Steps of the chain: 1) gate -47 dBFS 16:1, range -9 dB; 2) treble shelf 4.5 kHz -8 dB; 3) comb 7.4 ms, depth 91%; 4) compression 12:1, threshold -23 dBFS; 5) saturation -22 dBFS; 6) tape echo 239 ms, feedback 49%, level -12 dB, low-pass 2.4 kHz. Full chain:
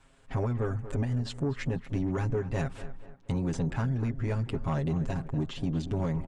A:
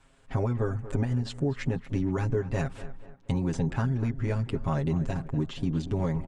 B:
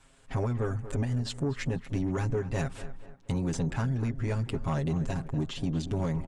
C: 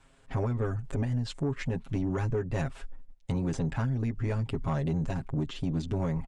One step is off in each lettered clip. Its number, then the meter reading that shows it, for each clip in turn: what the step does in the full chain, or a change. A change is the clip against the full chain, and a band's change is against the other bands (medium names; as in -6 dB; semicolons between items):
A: 5, distortion -17 dB; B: 2, 8 kHz band +5.5 dB; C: 6, echo-to-direct -29.0 dB to none